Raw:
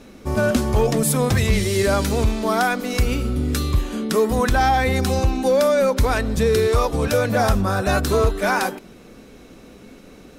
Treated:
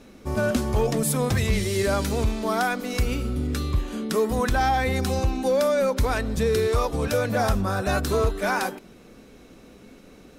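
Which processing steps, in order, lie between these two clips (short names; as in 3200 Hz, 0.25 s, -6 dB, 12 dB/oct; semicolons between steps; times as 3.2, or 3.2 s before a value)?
3.47–3.88 high shelf 5300 Hz -6.5 dB; gain -4.5 dB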